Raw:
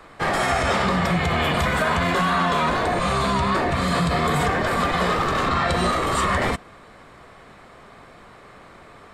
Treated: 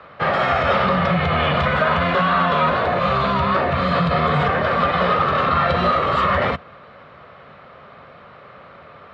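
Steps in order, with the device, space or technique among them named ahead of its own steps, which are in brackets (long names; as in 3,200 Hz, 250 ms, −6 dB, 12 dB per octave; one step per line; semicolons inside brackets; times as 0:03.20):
guitar cabinet (loudspeaker in its box 77–4,100 Hz, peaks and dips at 81 Hz +5 dB, 150 Hz +5 dB, 320 Hz −6 dB, 560 Hz +8 dB, 1,300 Hz +7 dB, 2,800 Hz +3 dB)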